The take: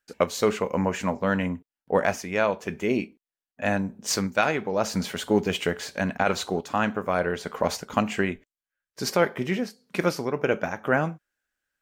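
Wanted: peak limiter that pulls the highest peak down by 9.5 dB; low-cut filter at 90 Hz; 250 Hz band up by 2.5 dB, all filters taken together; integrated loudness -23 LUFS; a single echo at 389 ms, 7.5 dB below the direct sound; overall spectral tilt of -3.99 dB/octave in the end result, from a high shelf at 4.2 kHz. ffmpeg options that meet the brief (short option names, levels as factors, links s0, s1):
-af "highpass=90,equalizer=f=250:t=o:g=3.5,highshelf=f=4200:g=8,alimiter=limit=0.2:level=0:latency=1,aecho=1:1:389:0.422,volume=1.58"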